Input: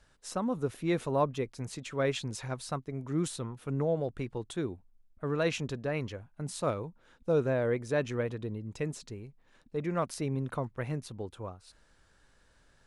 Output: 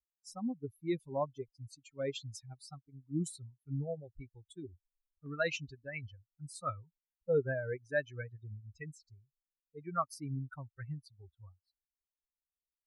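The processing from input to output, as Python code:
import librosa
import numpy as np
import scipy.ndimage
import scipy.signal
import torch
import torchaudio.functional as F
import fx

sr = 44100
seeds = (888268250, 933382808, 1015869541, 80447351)

y = fx.bin_expand(x, sr, power=3.0)
y = fx.peak_eq(y, sr, hz=1400.0, db=fx.steps((0.0, -8.5), (5.26, 7.5)), octaves=1.4)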